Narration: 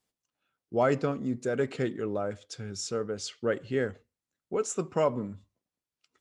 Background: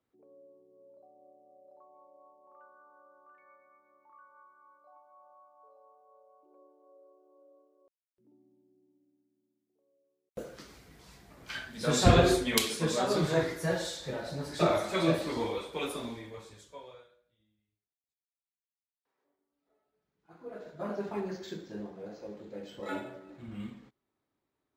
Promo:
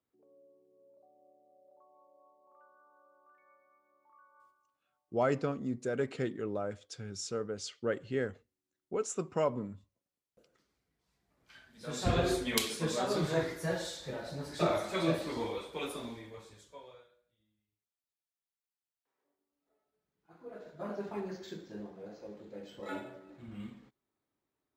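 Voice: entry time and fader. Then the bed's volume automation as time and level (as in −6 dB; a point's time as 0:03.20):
4.40 s, −4.5 dB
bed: 0:04.45 −5.5 dB
0:04.83 −26.5 dB
0:10.99 −26.5 dB
0:12.46 −3.5 dB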